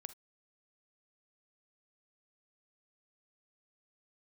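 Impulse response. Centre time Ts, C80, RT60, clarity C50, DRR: 4 ms, 30.5 dB, not exponential, 15.0 dB, 13.0 dB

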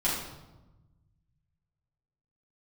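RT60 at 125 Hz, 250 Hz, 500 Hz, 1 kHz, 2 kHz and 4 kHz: 2.4, 1.6, 1.1, 1.0, 0.75, 0.75 s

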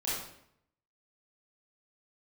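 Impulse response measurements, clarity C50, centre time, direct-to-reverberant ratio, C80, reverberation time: -0.5 dB, 66 ms, -9.0 dB, 4.0 dB, 0.70 s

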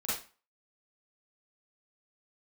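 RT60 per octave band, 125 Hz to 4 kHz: 0.30, 0.35, 0.30, 0.35, 0.35, 0.30 s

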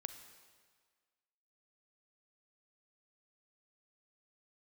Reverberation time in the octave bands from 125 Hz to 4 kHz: 1.4, 1.5, 1.6, 1.7, 1.6, 1.5 s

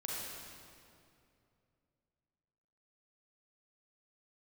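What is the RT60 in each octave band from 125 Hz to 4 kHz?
3.3, 3.0, 2.8, 2.3, 2.1, 1.8 s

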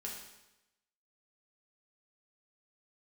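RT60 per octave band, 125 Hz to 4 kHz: 0.95, 0.95, 0.95, 0.95, 0.95, 0.90 s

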